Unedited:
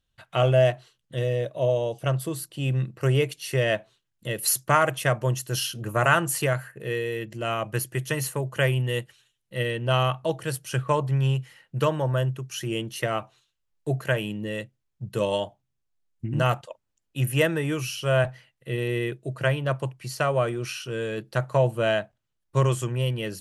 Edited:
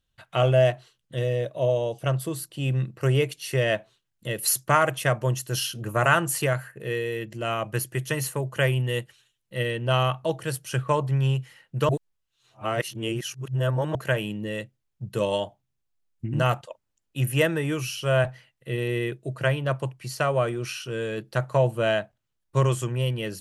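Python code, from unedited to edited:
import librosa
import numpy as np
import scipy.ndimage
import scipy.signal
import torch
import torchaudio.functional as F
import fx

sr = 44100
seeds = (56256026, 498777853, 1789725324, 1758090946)

y = fx.edit(x, sr, fx.reverse_span(start_s=11.89, length_s=2.06), tone=tone)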